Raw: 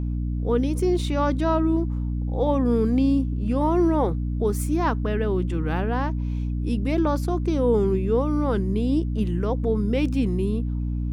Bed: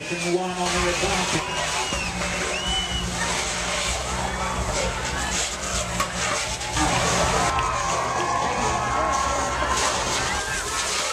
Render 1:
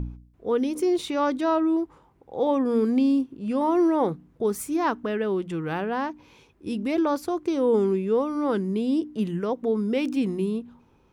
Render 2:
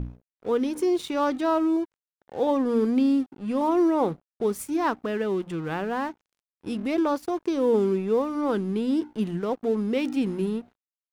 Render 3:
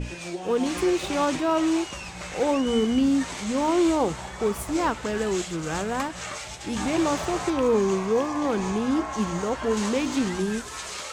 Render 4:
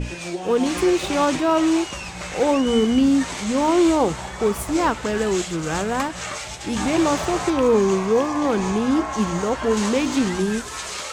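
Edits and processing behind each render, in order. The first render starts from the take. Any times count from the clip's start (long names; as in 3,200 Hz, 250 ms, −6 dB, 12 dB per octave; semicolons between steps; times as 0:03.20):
hum removal 60 Hz, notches 5
dead-zone distortion −45 dBFS
mix in bed −10.5 dB
level +4.5 dB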